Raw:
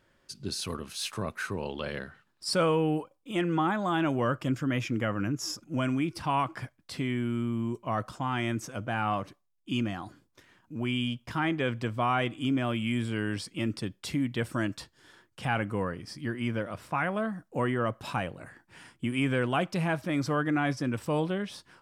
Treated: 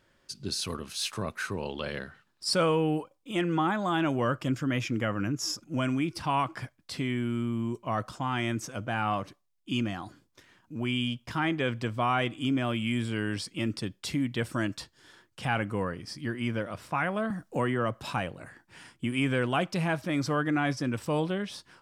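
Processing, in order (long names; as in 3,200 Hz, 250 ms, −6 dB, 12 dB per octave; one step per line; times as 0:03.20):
parametric band 5,100 Hz +3 dB 1.7 octaves
0:17.30–0:18.03: multiband upward and downward compressor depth 40%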